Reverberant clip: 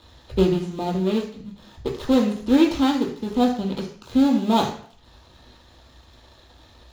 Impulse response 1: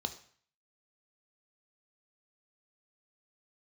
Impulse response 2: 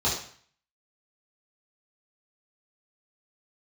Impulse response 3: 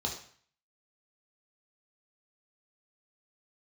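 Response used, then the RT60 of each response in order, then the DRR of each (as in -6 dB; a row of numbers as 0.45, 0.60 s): 3; 0.50, 0.50, 0.50 s; 7.0, -10.5, -1.0 dB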